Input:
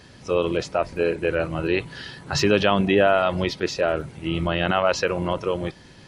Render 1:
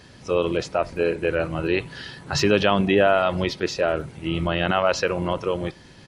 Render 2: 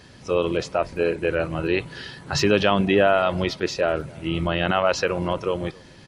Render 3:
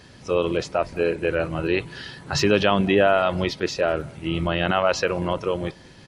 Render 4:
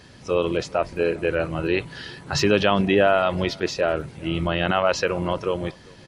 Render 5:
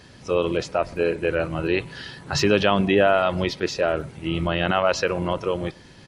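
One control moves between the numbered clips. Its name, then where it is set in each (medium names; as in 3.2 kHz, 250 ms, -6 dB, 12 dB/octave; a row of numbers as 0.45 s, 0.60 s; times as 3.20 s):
speakerphone echo, time: 80 ms, 270 ms, 190 ms, 400 ms, 120 ms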